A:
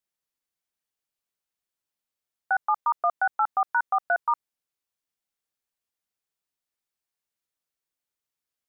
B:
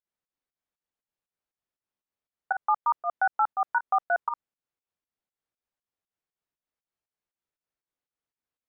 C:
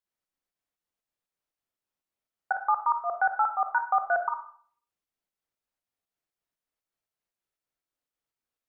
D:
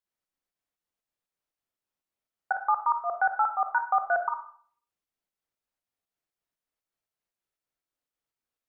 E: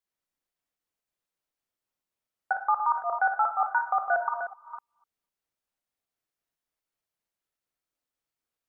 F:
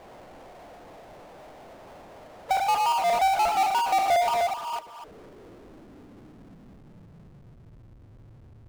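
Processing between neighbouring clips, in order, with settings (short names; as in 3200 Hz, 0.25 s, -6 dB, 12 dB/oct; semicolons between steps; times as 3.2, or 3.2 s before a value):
LPF 1400 Hz 6 dB/oct; pump 119 bpm, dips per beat 2, -17 dB, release 0.155 s; gain +2 dB
reverb RT60 0.50 s, pre-delay 4 ms, DRR 5.5 dB
nothing audible
reverse delay 0.252 s, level -8.5 dB
spectral gate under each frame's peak -25 dB strong; low-pass sweep 710 Hz -> 110 Hz, 4.42–7.84; power-law curve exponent 0.35; gain -6 dB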